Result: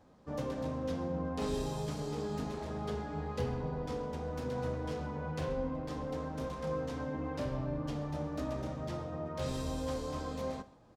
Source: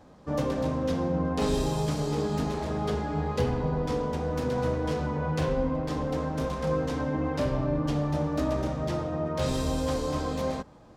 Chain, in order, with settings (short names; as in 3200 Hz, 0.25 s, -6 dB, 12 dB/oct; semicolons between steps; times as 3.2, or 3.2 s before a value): echo 0.13 s -20.5 dB; on a send at -15 dB: reverb, pre-delay 3 ms; on the sum: gain -9 dB